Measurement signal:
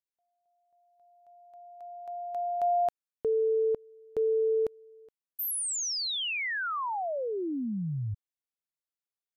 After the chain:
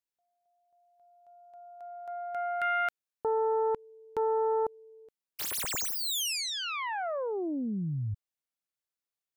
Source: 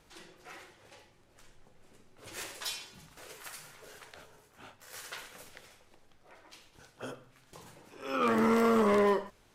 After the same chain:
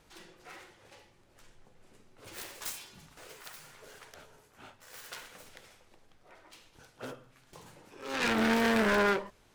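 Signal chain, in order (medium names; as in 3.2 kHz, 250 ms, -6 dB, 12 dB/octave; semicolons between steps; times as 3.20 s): self-modulated delay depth 0.33 ms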